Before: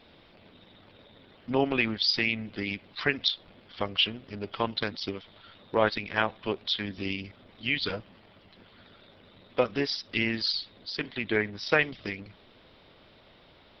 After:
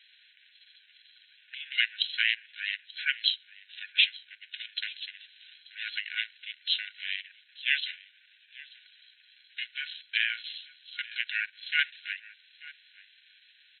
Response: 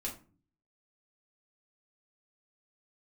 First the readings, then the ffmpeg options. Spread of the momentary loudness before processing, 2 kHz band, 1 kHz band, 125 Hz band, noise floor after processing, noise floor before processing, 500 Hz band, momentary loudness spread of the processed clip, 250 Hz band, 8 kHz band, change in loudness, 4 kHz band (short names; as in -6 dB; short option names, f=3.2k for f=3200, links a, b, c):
12 LU, +0.5 dB, under -15 dB, under -40 dB, -62 dBFS, -57 dBFS, under -40 dB, 21 LU, under -40 dB, n/a, -1.0 dB, +0.5 dB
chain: -af "aecho=1:1:884:0.0944,afftfilt=real='re*between(b*sr/4096,1800,3800)':imag='im*between(b*sr/4096,1800,3800)':win_size=4096:overlap=0.75,aeval=exprs='val(0)*sin(2*PI*370*n/s)':c=same,volume=5.5dB"